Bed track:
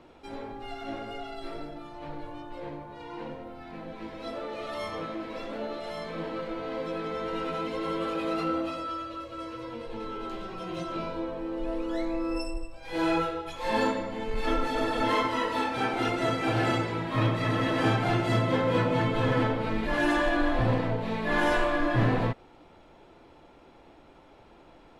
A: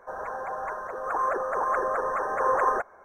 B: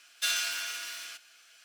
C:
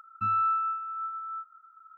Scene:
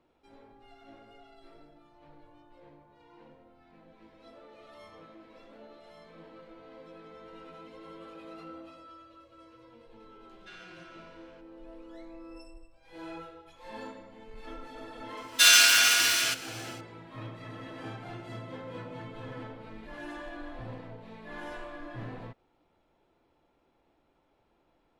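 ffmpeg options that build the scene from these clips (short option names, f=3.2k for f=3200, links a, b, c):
-filter_complex "[2:a]asplit=2[a][b];[0:a]volume=-16.5dB[c];[a]lowpass=2.1k[d];[b]dynaudnorm=f=100:g=5:m=15.5dB[e];[d]atrim=end=1.64,asetpts=PTS-STARTPTS,volume=-14dB,afade=t=in:d=0.004:c=hsin,afade=t=out:st=1.636:d=0.004:c=hsin,adelay=10240[f];[e]atrim=end=1.64,asetpts=PTS-STARTPTS,afade=t=in:d=0.004:c=hsin,afade=t=out:st=1.636:d=0.004:c=hsin,adelay=15170[g];[c][f][g]amix=inputs=3:normalize=0"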